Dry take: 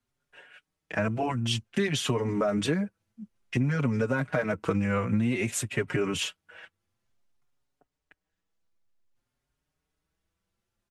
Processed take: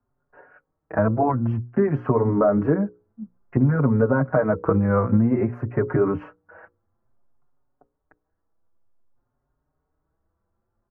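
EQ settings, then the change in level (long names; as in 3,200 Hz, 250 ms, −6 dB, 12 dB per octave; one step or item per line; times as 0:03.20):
inverse Chebyshev low-pass filter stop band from 3,300 Hz, stop band 50 dB
parametric band 180 Hz −8 dB 0.22 octaves
mains-hum notches 60/120/180/240/300/360/420/480/540 Hz
+9.0 dB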